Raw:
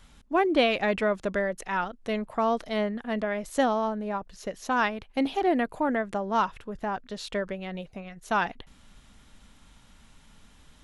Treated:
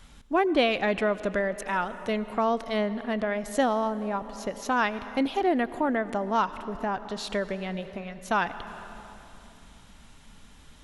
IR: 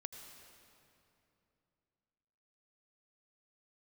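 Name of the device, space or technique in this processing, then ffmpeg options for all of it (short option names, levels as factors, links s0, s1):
compressed reverb return: -filter_complex "[0:a]asplit=2[s0][s1];[1:a]atrim=start_sample=2205[s2];[s1][s2]afir=irnorm=-1:irlink=0,acompressor=threshold=0.0178:ratio=6,volume=1.33[s3];[s0][s3]amix=inputs=2:normalize=0,volume=0.794"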